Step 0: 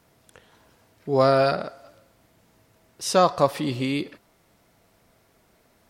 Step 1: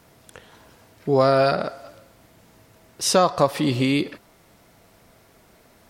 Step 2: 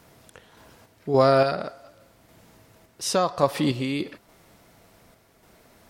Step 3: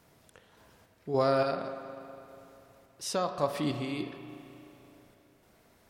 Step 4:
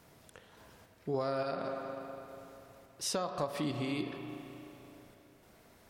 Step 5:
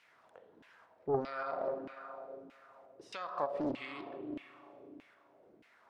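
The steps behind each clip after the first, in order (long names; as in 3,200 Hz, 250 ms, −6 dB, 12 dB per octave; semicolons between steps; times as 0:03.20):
downward compressor 2 to 1, threshold −25 dBFS, peak gain reduction 7.5 dB; level +7 dB
sample-and-hold tremolo
convolution reverb RT60 3.0 s, pre-delay 33 ms, DRR 7.5 dB; level −8.5 dB
downward compressor 6 to 1, threshold −33 dBFS, peak gain reduction 11 dB; level +2 dB
auto-filter band-pass saw down 1.6 Hz 260–2,600 Hz; highs frequency-modulated by the lows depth 0.61 ms; level +5.5 dB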